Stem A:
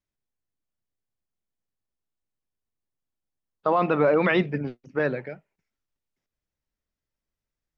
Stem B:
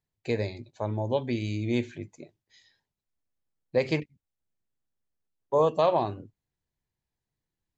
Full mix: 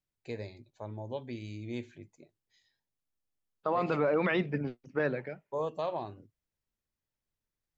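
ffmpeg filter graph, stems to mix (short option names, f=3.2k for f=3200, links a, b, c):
-filter_complex "[0:a]volume=-4dB[a];[1:a]volume=-11dB[b];[a][b]amix=inputs=2:normalize=0,alimiter=limit=-19.5dB:level=0:latency=1:release=140"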